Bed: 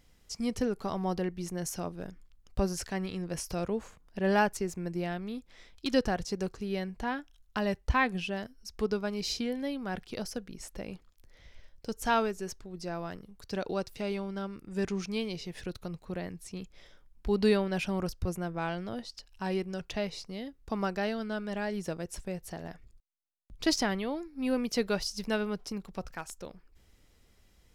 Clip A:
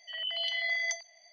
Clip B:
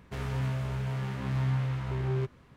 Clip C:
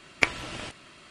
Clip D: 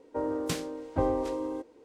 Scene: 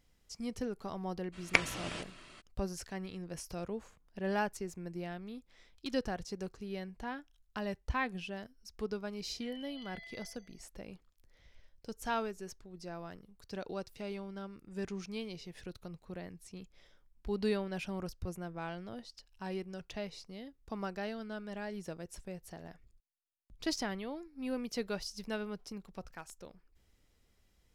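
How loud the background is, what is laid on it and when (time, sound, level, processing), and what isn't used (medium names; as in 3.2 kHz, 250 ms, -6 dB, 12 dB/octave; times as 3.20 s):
bed -7.5 dB
1.32 s: add C -4 dB, fades 0.02 s
9.34 s: add A -10.5 dB + compression 2.5:1, threshold -44 dBFS
not used: B, D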